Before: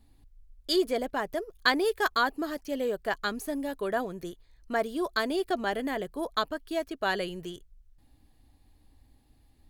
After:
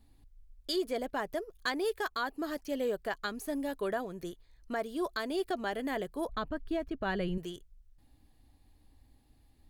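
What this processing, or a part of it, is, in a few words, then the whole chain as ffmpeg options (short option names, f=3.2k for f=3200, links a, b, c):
clipper into limiter: -filter_complex "[0:a]asettb=1/sr,asplit=3[a][b][c];[a]atrim=end=6.294[d];[b]atrim=start=6.29:end=7.38,asetpts=PTS-STARTPTS,afade=t=in:d=0.004:c=qsin,afade=t=out:st=1.086:d=0.004:c=qsin,bass=f=250:g=14,treble=f=4k:g=-12[e];[c]atrim=start=7.376[f];[d][e]acrossfade=d=0.004:c1=hsin:c2=qsin[g];[g][f]acrossfade=d=0.004:c1=qsin:c2=hsin,asoftclip=type=hard:threshold=-14.5dB,alimiter=limit=-21.5dB:level=0:latency=1:release=290,volume=-2dB"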